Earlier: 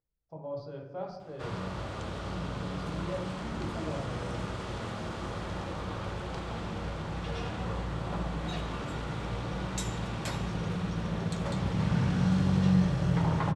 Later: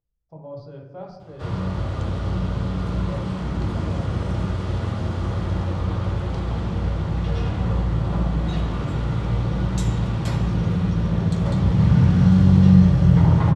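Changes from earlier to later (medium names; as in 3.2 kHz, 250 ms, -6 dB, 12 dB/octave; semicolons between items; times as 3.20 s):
background: send +8.0 dB; master: add bass shelf 170 Hz +9 dB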